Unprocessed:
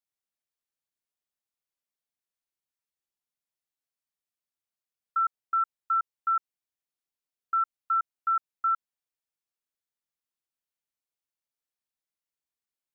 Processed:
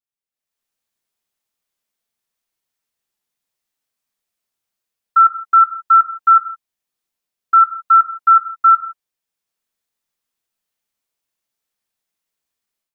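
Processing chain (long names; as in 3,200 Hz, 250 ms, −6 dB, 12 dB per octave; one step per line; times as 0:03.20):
dynamic equaliser 1,300 Hz, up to +7 dB, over −39 dBFS, Q 1.9
automatic gain control gain up to 15 dB
reverb whose tail is shaped and stops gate 190 ms falling, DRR 5.5 dB
level −5 dB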